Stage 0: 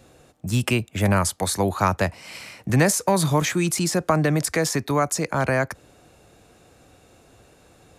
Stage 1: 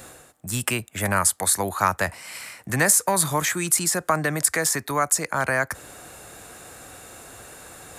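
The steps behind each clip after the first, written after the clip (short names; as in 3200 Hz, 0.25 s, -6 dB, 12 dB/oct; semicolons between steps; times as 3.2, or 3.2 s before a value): tilt shelf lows -8 dB; reverse; upward compressor, threshold -29 dBFS; reverse; band shelf 3800 Hz -8 dB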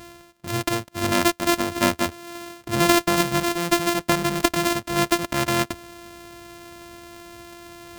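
sample sorter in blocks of 128 samples; gain +1 dB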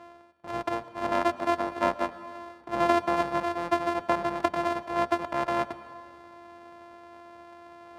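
octaver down 2 oct, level -1 dB; band-pass 800 Hz, Q 1.3; reverb RT60 2.3 s, pre-delay 0.1 s, DRR 16 dB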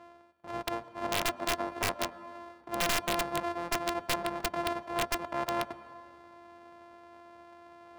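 wrapped overs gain 15 dB; gain -4.5 dB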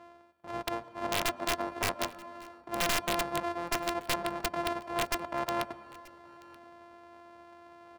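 echo 0.931 s -23 dB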